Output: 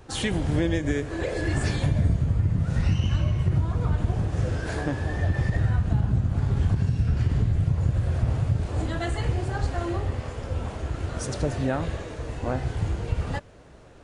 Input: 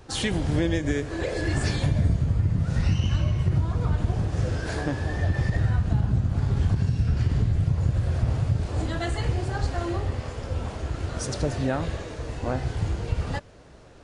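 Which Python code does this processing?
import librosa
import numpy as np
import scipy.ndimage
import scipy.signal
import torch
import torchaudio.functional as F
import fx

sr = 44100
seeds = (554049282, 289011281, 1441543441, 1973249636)

y = fx.peak_eq(x, sr, hz=4900.0, db=-4.0, octaves=0.82)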